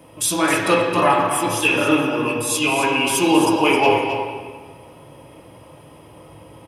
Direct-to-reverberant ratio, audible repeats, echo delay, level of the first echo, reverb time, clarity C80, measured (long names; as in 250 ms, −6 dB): −3.5 dB, 1, 265 ms, −8.5 dB, 1.6 s, 2.0 dB